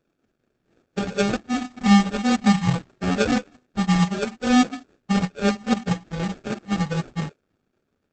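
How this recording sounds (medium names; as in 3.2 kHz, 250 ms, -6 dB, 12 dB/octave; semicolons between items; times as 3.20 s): a quantiser's noise floor 12-bit, dither triangular; phasing stages 8, 0.4 Hz, lowest notch 760–2300 Hz; aliases and images of a low sample rate 1 kHz, jitter 0%; Opus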